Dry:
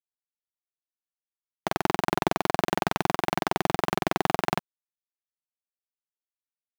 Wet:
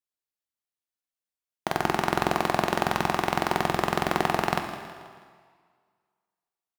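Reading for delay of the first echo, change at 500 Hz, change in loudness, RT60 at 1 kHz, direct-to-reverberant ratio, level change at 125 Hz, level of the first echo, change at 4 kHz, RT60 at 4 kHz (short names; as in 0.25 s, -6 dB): 0.161 s, +1.0 dB, +1.5 dB, 1.8 s, 4.5 dB, +1.0 dB, -14.0 dB, +1.0 dB, 1.6 s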